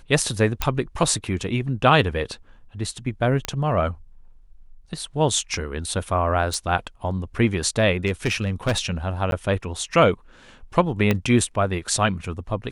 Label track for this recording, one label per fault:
0.620000	0.620000	click −5 dBFS
3.450000	3.450000	click −8 dBFS
6.540000	6.540000	click
8.060000	8.790000	clipping −16.5 dBFS
9.310000	9.320000	drop-out 12 ms
11.110000	11.110000	click −7 dBFS

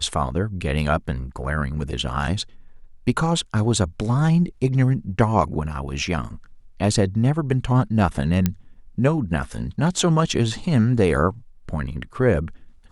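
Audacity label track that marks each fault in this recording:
8.460000	8.460000	click −6 dBFS

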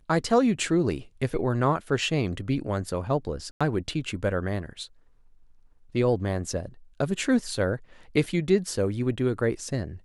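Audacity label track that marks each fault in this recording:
3.510000	3.610000	drop-out 96 ms

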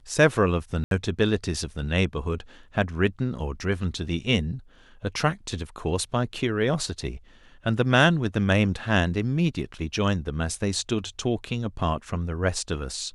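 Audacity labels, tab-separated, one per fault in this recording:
0.840000	0.910000	drop-out 72 ms

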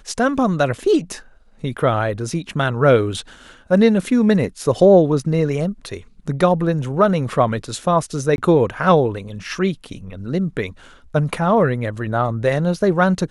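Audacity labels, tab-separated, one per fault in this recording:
8.360000	8.380000	drop-out 21 ms

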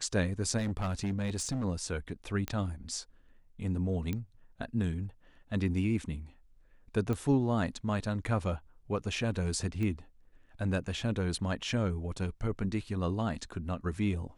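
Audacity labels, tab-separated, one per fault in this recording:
0.570000	1.650000	clipping −29 dBFS
2.480000	2.480000	click −18 dBFS
4.130000	4.130000	click −21 dBFS
7.130000	7.130000	click −22 dBFS
9.830000	9.830000	click −24 dBFS

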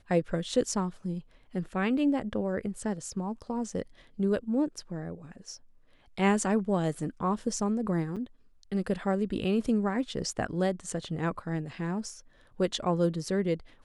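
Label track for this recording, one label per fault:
8.160000	8.170000	drop-out 6.3 ms

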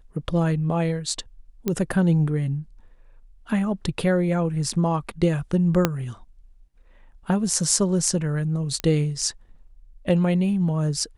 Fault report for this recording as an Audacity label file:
1.680000	1.680000	click −10 dBFS
5.850000	5.850000	click −4 dBFS
8.800000	8.800000	click −12 dBFS

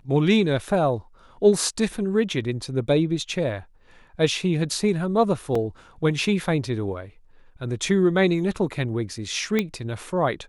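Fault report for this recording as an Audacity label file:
5.550000	5.550000	drop-out 3.8 ms
9.590000	9.590000	click −9 dBFS

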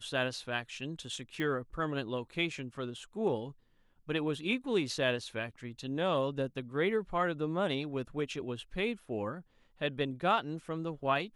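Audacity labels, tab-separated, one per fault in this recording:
1.400000	1.400000	click −24 dBFS

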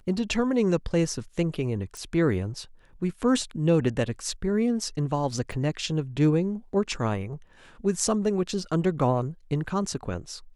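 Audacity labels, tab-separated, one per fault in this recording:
1.970000	1.970000	click −23 dBFS
5.520000	5.520000	drop-out 3.3 ms

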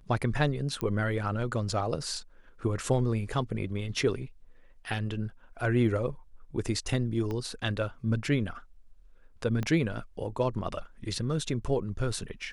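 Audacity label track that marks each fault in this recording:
0.810000	0.810000	click −18 dBFS
7.310000	7.310000	click −23 dBFS
9.630000	9.630000	click −19 dBFS

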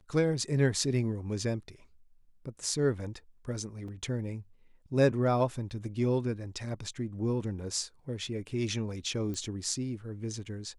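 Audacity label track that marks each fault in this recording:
3.880000	3.880000	drop-out 3.9 ms
9.340000	9.340000	click −26 dBFS

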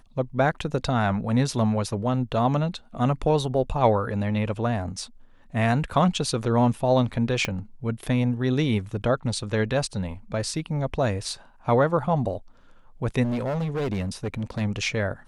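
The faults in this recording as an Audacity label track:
7.450000	7.450000	click −11 dBFS
13.230000	14.620000	clipping −23.5 dBFS

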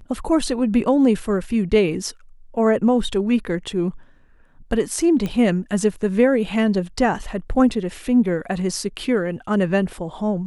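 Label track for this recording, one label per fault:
5.260000	5.260000	click −14 dBFS

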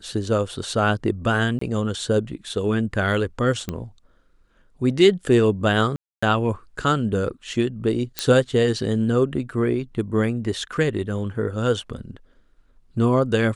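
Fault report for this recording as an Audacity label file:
1.590000	1.610000	drop-out 24 ms
3.690000	3.690000	click −13 dBFS
5.960000	6.220000	drop-out 265 ms
8.190000	8.190000	click −6 dBFS

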